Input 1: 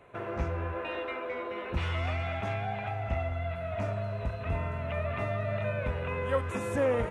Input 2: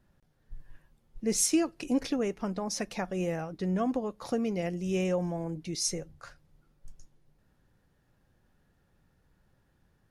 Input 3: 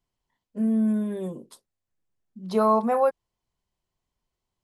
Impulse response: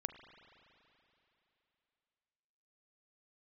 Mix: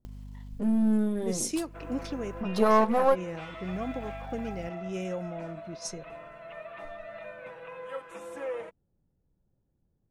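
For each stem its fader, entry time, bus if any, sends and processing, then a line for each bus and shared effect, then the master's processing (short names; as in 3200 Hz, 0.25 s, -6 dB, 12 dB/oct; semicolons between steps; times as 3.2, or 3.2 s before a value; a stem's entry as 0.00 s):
-10.5 dB, 1.60 s, no send, HPF 350 Hz 12 dB/oct; comb 6.1 ms, depth 100%
-5.5 dB, 0.00 s, no send, low-pass opened by the level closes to 510 Hz, open at -25 dBFS
+1.0 dB, 0.05 s, no send, half-wave gain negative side -7 dB; hum 50 Hz, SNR 34 dB; upward compressor, threshold -27 dBFS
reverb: off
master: dry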